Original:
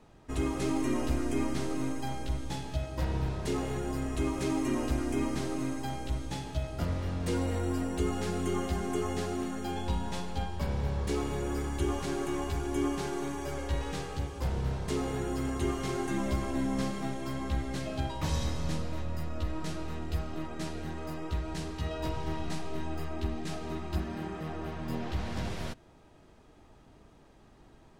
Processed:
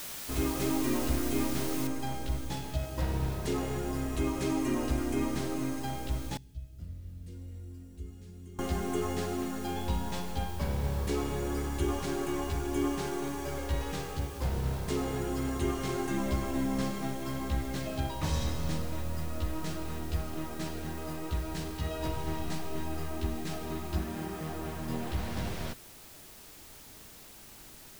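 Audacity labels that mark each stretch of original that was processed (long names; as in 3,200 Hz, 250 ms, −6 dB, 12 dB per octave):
1.870000	1.870000	noise floor change −41 dB −52 dB
6.370000	8.590000	guitar amp tone stack bass-middle-treble 10-0-1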